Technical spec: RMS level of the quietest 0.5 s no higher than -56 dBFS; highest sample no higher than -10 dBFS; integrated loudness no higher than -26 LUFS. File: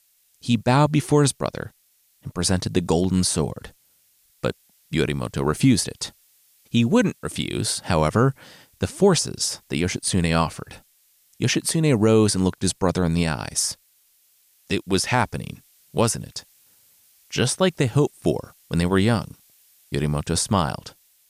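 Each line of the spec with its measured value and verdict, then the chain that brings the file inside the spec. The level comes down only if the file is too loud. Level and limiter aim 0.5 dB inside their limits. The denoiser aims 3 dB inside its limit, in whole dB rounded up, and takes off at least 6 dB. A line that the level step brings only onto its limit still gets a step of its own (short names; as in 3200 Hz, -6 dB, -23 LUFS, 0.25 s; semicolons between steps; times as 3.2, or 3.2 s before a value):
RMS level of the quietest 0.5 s -63 dBFS: OK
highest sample -6.0 dBFS: fail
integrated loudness -22.0 LUFS: fail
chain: gain -4.5 dB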